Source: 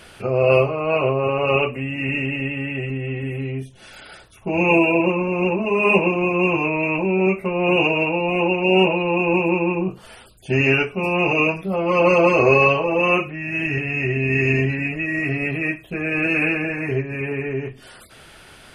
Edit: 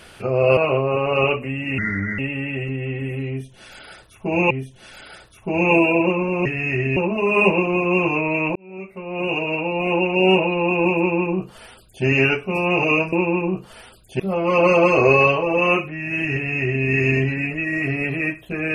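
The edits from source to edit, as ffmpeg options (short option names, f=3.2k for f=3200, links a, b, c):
-filter_complex "[0:a]asplit=10[a][b][c][d][e][f][g][h][i][j];[a]atrim=end=0.572[k];[b]atrim=start=0.888:end=2.104[l];[c]atrim=start=2.1:end=2.4,asetpts=PTS-STARTPTS,asetrate=32634,aresample=44100,atrim=end_sample=17878,asetpts=PTS-STARTPTS[m];[d]atrim=start=2.396:end=4.722[n];[e]atrim=start=3.498:end=5.452[o];[f]atrim=start=13.758:end=14.272[p];[g]atrim=start=5.448:end=7.04,asetpts=PTS-STARTPTS,afade=t=out:st=1.588:d=0.004:c=hsin[q];[h]atrim=start=7.04:end=11.612,asetpts=PTS-STARTPTS,afade=t=in:d=1.45[r];[i]atrim=start=9.458:end=10.532[s];[j]atrim=start=11.608[t];[k][l]acrossfade=d=0.004:c1=hsin:c2=hsin[u];[u][m]acrossfade=d=0.004:c1=hsin:c2=hsin[v];[v][n]acrossfade=d=0.004:c1=hsin:c2=hsin[w];[w][o]acrossfade=d=0.004:c1=hsin:c2=hsin[x];[x][p]acrossfade=d=0.004:c1=hsin:c2=hsin[y];[q][r]concat=n=2:v=0:a=1[z];[y][z]acrossfade=d=0.004:c1=hsin:c2=hsin[aa];[aa][s]acrossfade=d=0.004:c1=hsin:c2=hsin[ab];[ab][t]acrossfade=d=0.004:c1=hsin:c2=hsin"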